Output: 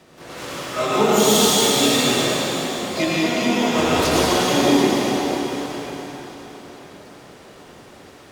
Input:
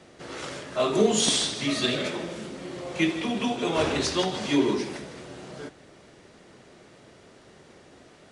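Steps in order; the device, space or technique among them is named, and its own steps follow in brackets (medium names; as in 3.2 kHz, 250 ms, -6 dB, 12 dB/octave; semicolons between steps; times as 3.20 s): shimmer-style reverb (harmony voices +12 st -6 dB; reverberation RT60 4.2 s, pre-delay 78 ms, DRR -7 dB)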